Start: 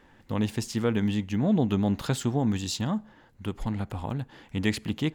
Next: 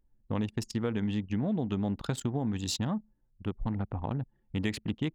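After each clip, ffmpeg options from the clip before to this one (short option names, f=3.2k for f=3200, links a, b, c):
-af "anlmdn=6.31,acompressor=threshold=-27dB:ratio=6"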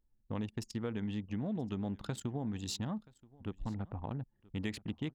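-af "aecho=1:1:978:0.0668,volume=-6.5dB"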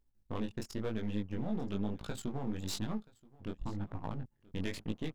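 -af "aeval=exprs='if(lt(val(0),0),0.251*val(0),val(0))':c=same,flanger=delay=18:depth=5:speed=1,volume=6.5dB"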